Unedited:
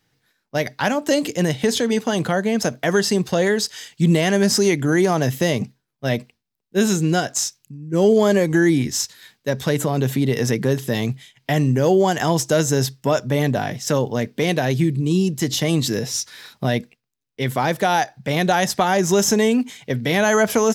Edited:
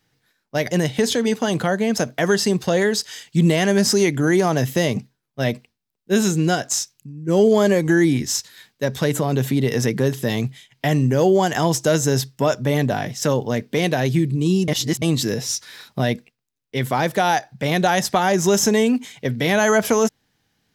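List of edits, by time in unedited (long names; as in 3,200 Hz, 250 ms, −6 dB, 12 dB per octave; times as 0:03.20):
0:00.71–0:01.36: remove
0:15.33–0:15.67: reverse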